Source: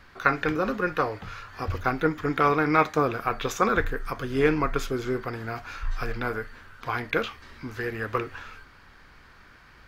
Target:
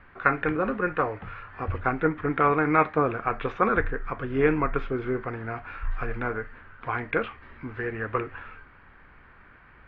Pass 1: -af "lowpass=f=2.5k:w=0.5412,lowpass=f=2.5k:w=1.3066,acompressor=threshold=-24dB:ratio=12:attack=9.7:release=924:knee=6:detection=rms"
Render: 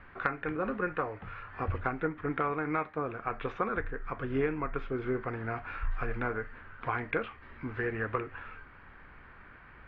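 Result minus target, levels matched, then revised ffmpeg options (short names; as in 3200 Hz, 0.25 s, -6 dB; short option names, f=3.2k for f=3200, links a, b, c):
compressor: peak gain reduction +13.5 dB
-af "lowpass=f=2.5k:w=0.5412,lowpass=f=2.5k:w=1.3066"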